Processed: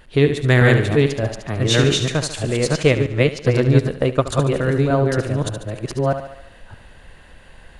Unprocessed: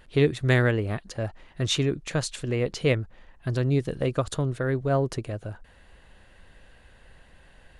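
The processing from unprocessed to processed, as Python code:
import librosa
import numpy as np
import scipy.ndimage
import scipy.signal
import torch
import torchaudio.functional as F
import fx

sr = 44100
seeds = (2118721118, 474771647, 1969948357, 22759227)

y = fx.reverse_delay(x, sr, ms=613, wet_db=-1.0)
y = fx.echo_thinned(y, sr, ms=72, feedback_pct=55, hz=160.0, wet_db=-9)
y = fx.transient(y, sr, attack_db=4, sustain_db=-5, at=(2.66, 4.26), fade=0.02)
y = y * librosa.db_to_amplitude(5.5)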